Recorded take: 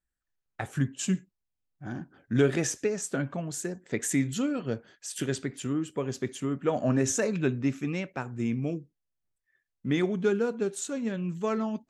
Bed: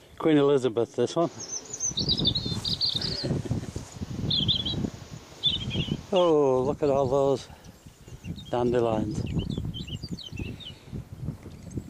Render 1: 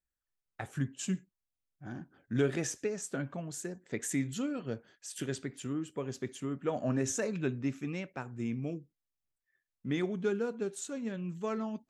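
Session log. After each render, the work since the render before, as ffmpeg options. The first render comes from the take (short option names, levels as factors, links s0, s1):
-af "volume=0.501"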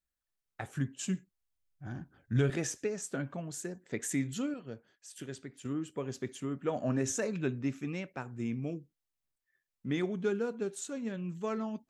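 -filter_complex "[0:a]asettb=1/sr,asplit=3[s0][s1][s2];[s0]atrim=end=1.054[s3];[s1]atrim=start=1.05:end=2.5,asetpts=PTS-STARTPTS,afade=t=in:d=0.004:c=qsin,afade=t=out:st=1.446:d=0.004:c=qsin,asubboost=boost=9:cutoff=130[s4];[s2]atrim=start=2.496[s5];[s3][s4]acrossfade=d=0.004:c1=hsin:c2=qsin[s6];[s6][s5]acrossfade=d=0.004:c1=qsin:c2=hsin,asplit=3[s7][s8][s9];[s7]atrim=end=4.542[s10];[s8]atrim=start=4.538:end=5.652,asetpts=PTS-STARTPTS,volume=0.473[s11];[s9]atrim=start=5.648[s12];[s10][s11]acrossfade=d=0.004:c1=hsin:c2=hsin[s13];[s13][s12]acrossfade=d=0.004:c1=hsin:c2=hsin"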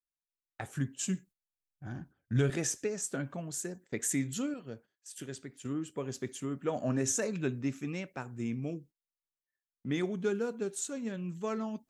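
-af "agate=range=0.178:threshold=0.00224:ratio=16:detection=peak,adynamicequalizer=threshold=0.00178:dfrequency=5100:dqfactor=0.7:tfrequency=5100:tqfactor=0.7:attack=5:release=100:ratio=0.375:range=3:mode=boostabove:tftype=highshelf"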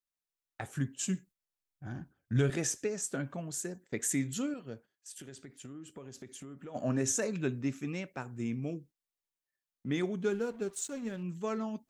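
-filter_complex "[0:a]asplit=3[s0][s1][s2];[s0]afade=t=out:st=5.15:d=0.02[s3];[s1]acompressor=threshold=0.00708:ratio=6:attack=3.2:release=140:knee=1:detection=peak,afade=t=in:st=5.15:d=0.02,afade=t=out:st=6.74:d=0.02[s4];[s2]afade=t=in:st=6.74:d=0.02[s5];[s3][s4][s5]amix=inputs=3:normalize=0,asettb=1/sr,asplit=3[s6][s7][s8];[s6]atrim=end=10.304[s9];[s7]atrim=start=10.3:end=11.23,asetpts=PTS-STARTPTS,afade=t=in:d=0.004:c=qsin,afade=t=out:st=0.926:d=0.004:c=qsin,aeval=exprs='sgn(val(0))*max(abs(val(0))-0.00211,0)':c=same[s10];[s8]atrim=start=11.226[s11];[s9][s10]acrossfade=d=0.004:c1=hsin:c2=qsin[s12];[s12][s11]acrossfade=d=0.004:c1=qsin:c2=hsin"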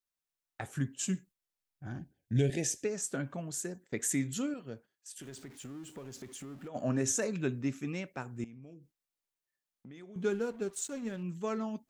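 -filter_complex "[0:a]asplit=3[s0][s1][s2];[s0]afade=t=out:st=1.98:d=0.02[s3];[s1]asuperstop=centerf=1200:order=4:qfactor=1.1,afade=t=in:st=1.98:d=0.02,afade=t=out:st=2.83:d=0.02[s4];[s2]afade=t=in:st=2.83:d=0.02[s5];[s3][s4][s5]amix=inputs=3:normalize=0,asettb=1/sr,asplit=3[s6][s7][s8];[s6]atrim=end=5.224[s9];[s7]atrim=start=5.22:end=6.68,asetpts=PTS-STARTPTS,afade=t=in:d=0.004:c=qsin,afade=t=out:st=1.456:d=0.004:c=qsin,aeval=exprs='val(0)+0.5*0.00237*sgn(val(0))':c=same[s10];[s8]atrim=start=6.676[s11];[s9][s10]acrossfade=d=0.004:c1=hsin:c2=qsin[s12];[s12][s11]acrossfade=d=0.004:c1=qsin:c2=hsin,asettb=1/sr,asplit=3[s13][s14][s15];[s13]atrim=end=8.444[s16];[s14]atrim=start=8.44:end=10.16,asetpts=PTS-STARTPTS,afade=t=in:d=0.004:c=qsin,afade=t=out:st=1.716:d=0.004:c=qsin,acompressor=threshold=0.00355:ratio=5:attack=3.2:release=140:knee=1:detection=peak[s17];[s15]atrim=start=10.156[s18];[s16][s17]acrossfade=d=0.004:c1=hsin:c2=qsin[s19];[s19][s18]acrossfade=d=0.004:c1=qsin:c2=hsin"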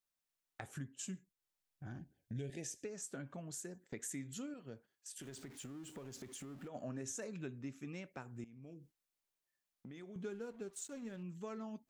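-af "acompressor=threshold=0.00398:ratio=2.5"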